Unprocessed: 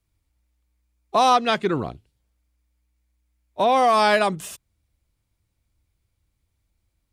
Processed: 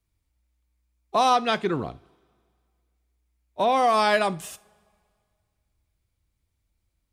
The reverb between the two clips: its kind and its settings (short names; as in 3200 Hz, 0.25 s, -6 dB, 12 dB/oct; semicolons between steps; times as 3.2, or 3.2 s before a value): two-slope reverb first 0.34 s, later 2.1 s, from -22 dB, DRR 15 dB; gain -3 dB